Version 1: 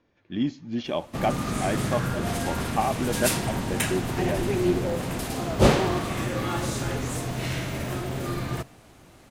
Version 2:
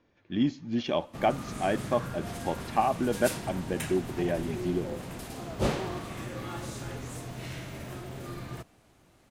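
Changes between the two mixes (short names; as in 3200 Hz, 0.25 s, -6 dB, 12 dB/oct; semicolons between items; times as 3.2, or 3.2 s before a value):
background -9.0 dB; reverb: off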